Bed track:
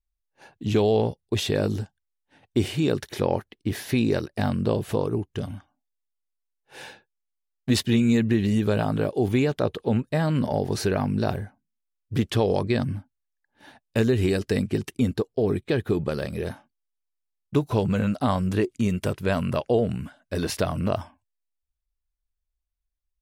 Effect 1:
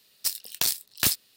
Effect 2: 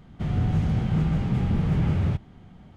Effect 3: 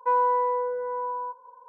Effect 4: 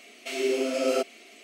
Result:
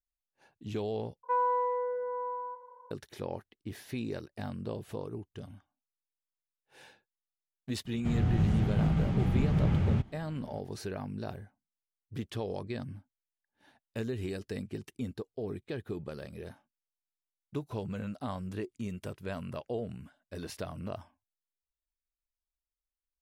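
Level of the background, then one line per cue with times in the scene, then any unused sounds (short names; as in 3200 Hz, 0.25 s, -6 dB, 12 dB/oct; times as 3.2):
bed track -14 dB
1.23 replace with 3 -6 dB + feedback echo 0.2 s, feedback 44%, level -14.5 dB
7.85 add 2 -4 dB
not used: 1, 4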